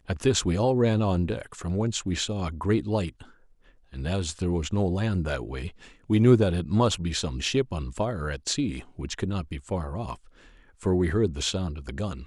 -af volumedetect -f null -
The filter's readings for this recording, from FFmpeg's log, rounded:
mean_volume: -26.7 dB
max_volume: -6.1 dB